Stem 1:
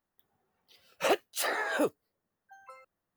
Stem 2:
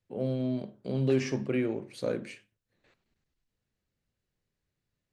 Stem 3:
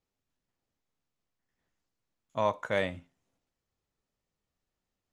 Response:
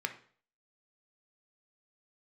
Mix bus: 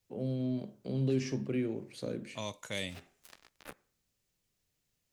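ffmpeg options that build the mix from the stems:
-filter_complex "[0:a]lowshelf=f=200:t=q:w=3:g=10,flanger=delay=19:depth=2.7:speed=1.3,acrusher=bits=3:mix=0:aa=0.5,adelay=1850,volume=-8.5dB,asplit=2[a][b];[b]volume=-14dB[c];[1:a]volume=-2dB[d];[2:a]aexciter=amount=4:drive=3.1:freq=2.1k,volume=-4.5dB,asplit=2[e][f];[f]apad=whole_len=220980[g];[a][g]sidechaincompress=threshold=-49dB:ratio=8:attack=27:release=304[h];[3:a]atrim=start_sample=2205[i];[c][i]afir=irnorm=-1:irlink=0[j];[h][d][e][j]amix=inputs=4:normalize=0,acrossover=split=380|3000[k][l][m];[l]acompressor=threshold=-46dB:ratio=3[n];[k][n][m]amix=inputs=3:normalize=0"

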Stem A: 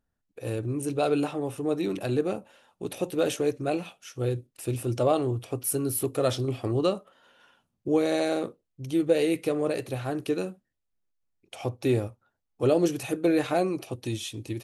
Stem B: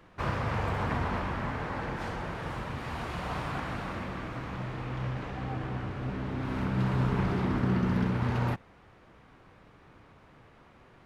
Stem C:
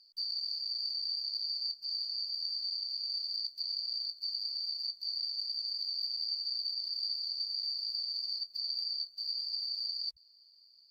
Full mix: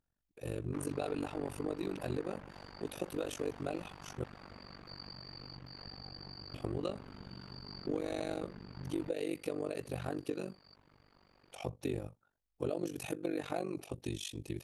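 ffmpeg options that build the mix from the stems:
-filter_complex "[0:a]acompressor=threshold=-28dB:ratio=4,volume=-2.5dB,asplit=3[a][b][c];[a]atrim=end=4.24,asetpts=PTS-STARTPTS,afade=t=out:st=4.236:d=0.004:c=hsin[d];[b]atrim=start=4.24:end=6.54,asetpts=PTS-STARTPTS,volume=0[e];[c]atrim=start=6.54,asetpts=PTS-STARTPTS,afade=t=in:d=0.004:c=hsin[f];[d][e][f]concat=n=3:v=0:a=1,asplit=2[g][h];[1:a]acompressor=threshold=-40dB:ratio=3,tremolo=f=160:d=0.71,adelay=550,volume=-3.5dB[i];[2:a]adelay=650,volume=-11.5dB[j];[h]apad=whole_len=509659[k];[j][k]sidechaincompress=threshold=-60dB:ratio=3:attack=16:release=324[l];[g][i][l]amix=inputs=3:normalize=0,tremolo=f=48:d=0.947"

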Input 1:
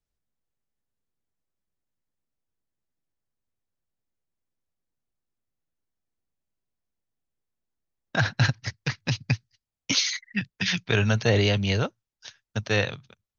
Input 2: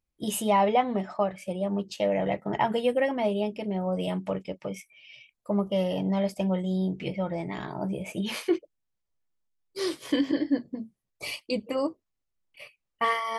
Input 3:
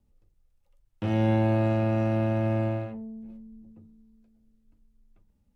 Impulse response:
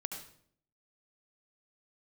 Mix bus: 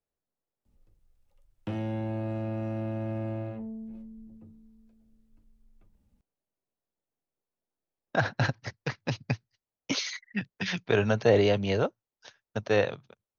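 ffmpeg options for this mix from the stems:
-filter_complex "[0:a]equalizer=f=530:w=0.4:g=14,volume=-10.5dB[a];[2:a]acrossover=split=190|560[b][c][d];[b]acompressor=threshold=-37dB:ratio=4[e];[c]acompressor=threshold=-37dB:ratio=4[f];[d]acompressor=threshold=-45dB:ratio=4[g];[e][f][g]amix=inputs=3:normalize=0,adelay=650,volume=0.5dB[h];[a][h]amix=inputs=2:normalize=0"

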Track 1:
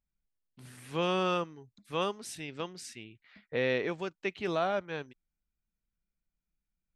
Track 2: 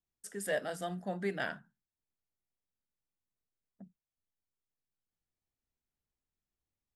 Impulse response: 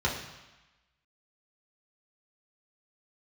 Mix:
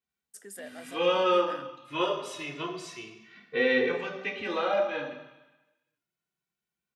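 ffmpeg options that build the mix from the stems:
-filter_complex "[0:a]asplit=2[a][b];[b]adelay=2.2,afreqshift=0.29[c];[a][c]amix=inputs=2:normalize=1,volume=1dB,asplit=2[d][e];[e]volume=-3.5dB[f];[1:a]highshelf=f=8k:g=5,acompressor=threshold=-37dB:ratio=6,adelay=100,volume=-3dB[g];[2:a]atrim=start_sample=2205[h];[f][h]afir=irnorm=-1:irlink=0[i];[d][g][i]amix=inputs=3:normalize=0,highpass=270"

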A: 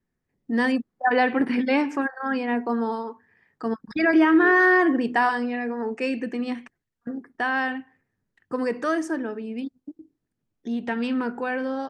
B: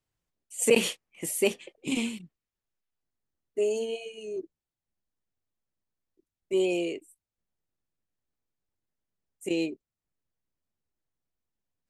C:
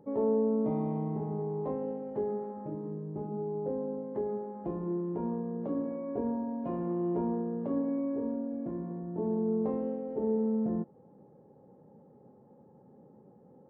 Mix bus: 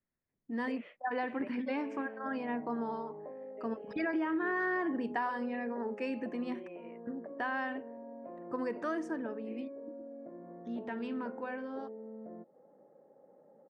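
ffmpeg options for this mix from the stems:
-filter_complex "[0:a]lowpass=f=2.8k:p=1,equalizer=f=1k:w=6.9:g=4.5,dynaudnorm=f=380:g=13:m=4dB,volume=-12.5dB[a];[1:a]volume=-10dB[b];[2:a]adynamicequalizer=threshold=0.00316:dfrequency=1400:dqfactor=0.88:tfrequency=1400:tqfactor=0.88:attack=5:release=100:ratio=0.375:range=2:mode=cutabove:tftype=bell,adelay=1600,volume=-2dB[c];[b][c]amix=inputs=2:normalize=0,highpass=370,equalizer=f=410:t=q:w=4:g=-4,equalizer=f=600:t=q:w=4:g=9,equalizer=f=920:t=q:w=4:g=-5,equalizer=f=1.4k:t=q:w=4:g=3,equalizer=f=2k:t=q:w=4:g=9,lowpass=f=2.1k:w=0.5412,lowpass=f=2.1k:w=1.3066,acompressor=threshold=-44dB:ratio=5,volume=0dB[d];[a][d]amix=inputs=2:normalize=0,acompressor=threshold=-30dB:ratio=6"

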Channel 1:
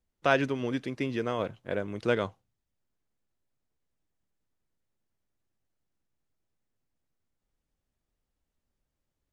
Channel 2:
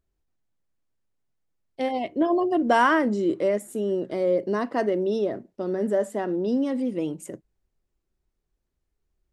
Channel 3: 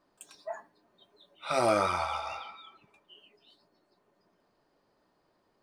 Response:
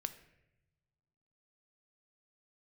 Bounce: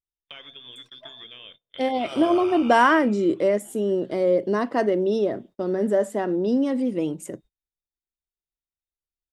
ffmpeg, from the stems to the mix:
-filter_complex "[0:a]acompressor=threshold=-36dB:ratio=1.5,adelay=50,volume=-6dB,asplit=2[a][b];[b]volume=-13dB[c];[1:a]volume=2.5dB,asplit=2[d][e];[2:a]adelay=550,volume=-3.5dB,asplit=2[f][g];[g]volume=-4.5dB[h];[e]apad=whole_len=272097[i];[f][i]sidechaingate=range=-33dB:threshold=-39dB:ratio=16:detection=peak[j];[a][j]amix=inputs=2:normalize=0,lowpass=f=3.1k:t=q:w=0.5098,lowpass=f=3.1k:t=q:w=0.6013,lowpass=f=3.1k:t=q:w=0.9,lowpass=f=3.1k:t=q:w=2.563,afreqshift=-3700,acompressor=threshold=-39dB:ratio=16,volume=0dB[k];[3:a]atrim=start_sample=2205[l];[c][h]amix=inputs=2:normalize=0[m];[m][l]afir=irnorm=-1:irlink=0[n];[d][k][n]amix=inputs=3:normalize=0,agate=range=-26dB:threshold=-47dB:ratio=16:detection=peak"

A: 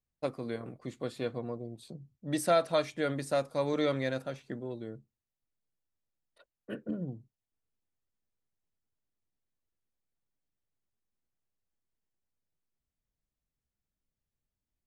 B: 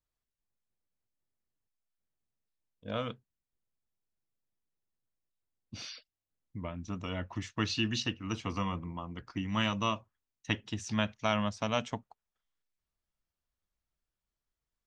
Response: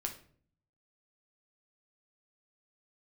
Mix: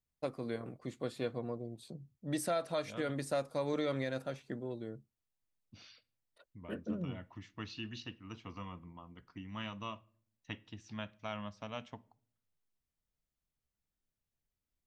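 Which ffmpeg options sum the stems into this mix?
-filter_complex "[0:a]volume=-2dB[a];[1:a]lowpass=4.6k,volume=-13.5dB,asplit=2[b][c];[c]volume=-11dB[d];[2:a]atrim=start_sample=2205[e];[d][e]afir=irnorm=-1:irlink=0[f];[a][b][f]amix=inputs=3:normalize=0,alimiter=level_in=0.5dB:limit=-24dB:level=0:latency=1:release=155,volume=-0.5dB"

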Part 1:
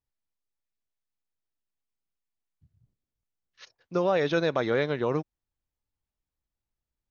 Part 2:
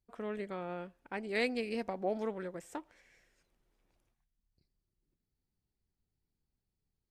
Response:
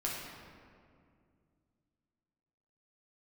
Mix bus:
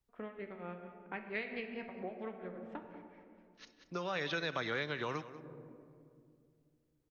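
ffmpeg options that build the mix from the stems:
-filter_complex "[0:a]volume=1dB,asplit=3[a][b][c];[b]volume=-20.5dB[d];[c]volume=-17dB[e];[1:a]lowpass=f=3k:w=0.5412,lowpass=f=3k:w=1.3066,tremolo=f=4.4:d=0.9,volume=-3dB,asplit=4[f][g][h][i];[g]volume=-5dB[j];[h]volume=-13.5dB[k];[i]apad=whole_len=313278[l];[a][l]sidechaincompress=threshold=-58dB:ratio=8:attack=41:release=1440[m];[2:a]atrim=start_sample=2205[n];[d][j]amix=inputs=2:normalize=0[o];[o][n]afir=irnorm=-1:irlink=0[p];[e][k]amix=inputs=2:normalize=0,aecho=0:1:189:1[q];[m][f][p][q]amix=inputs=4:normalize=0,acrossover=split=280|1200|5000[r][s][t][u];[r]acompressor=threshold=-47dB:ratio=4[v];[s]acompressor=threshold=-45dB:ratio=4[w];[t]acompressor=threshold=-36dB:ratio=4[x];[u]acompressor=threshold=-58dB:ratio=4[y];[v][w][x][y]amix=inputs=4:normalize=0"

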